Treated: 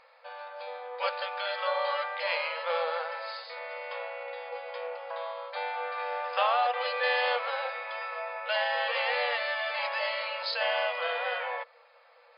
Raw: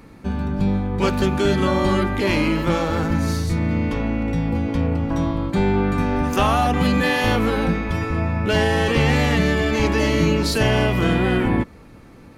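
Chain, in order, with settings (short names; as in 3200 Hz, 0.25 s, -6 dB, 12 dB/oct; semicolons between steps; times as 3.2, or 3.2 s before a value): FFT band-pass 470–5100 Hz; gain -6 dB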